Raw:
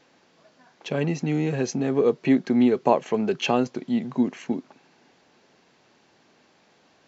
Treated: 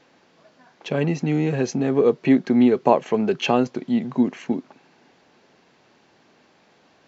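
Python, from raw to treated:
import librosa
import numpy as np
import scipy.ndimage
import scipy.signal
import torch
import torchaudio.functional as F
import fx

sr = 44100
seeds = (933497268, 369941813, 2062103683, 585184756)

y = fx.high_shelf(x, sr, hz=6100.0, db=-7.0)
y = y * librosa.db_to_amplitude(3.0)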